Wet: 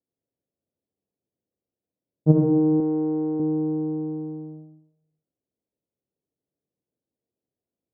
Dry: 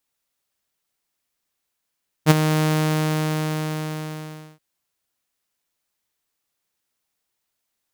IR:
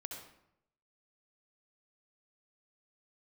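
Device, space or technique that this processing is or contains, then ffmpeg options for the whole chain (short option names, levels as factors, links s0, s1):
next room: -filter_complex "[0:a]lowpass=f=520:w=0.5412,lowpass=f=520:w=1.3066[s0];[1:a]atrim=start_sample=2205[s1];[s0][s1]afir=irnorm=-1:irlink=0,highpass=87,asettb=1/sr,asplit=3[s2][s3][s4];[s2]atrim=end=2.804[s5];[s3]atrim=start=2.8:end=3.4,asetpts=PTS-STARTPTS,afade=t=in:d=0.004:c=qsin,afade=t=out:st=0.596:d=0.004:c=qsin,aemphasis=mode=production:type=bsi[s6];[s4]atrim=start=3.396[s7];[s5][s6]acrossfade=d=0.004:c1=hsin:c2=qsin[s8];[s8][s7]acrossfade=d=0.004:c1=qsin:c2=hsin,volume=2"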